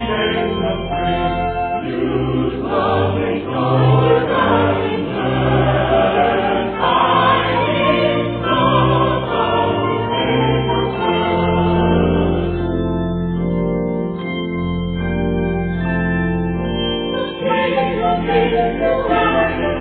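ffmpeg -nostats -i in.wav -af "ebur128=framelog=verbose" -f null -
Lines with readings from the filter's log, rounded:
Integrated loudness:
  I:         -16.9 LUFS
  Threshold: -26.9 LUFS
Loudness range:
  LRA:         4.6 LU
  Threshold: -36.8 LUFS
  LRA low:   -19.7 LUFS
  LRA high:  -15.1 LUFS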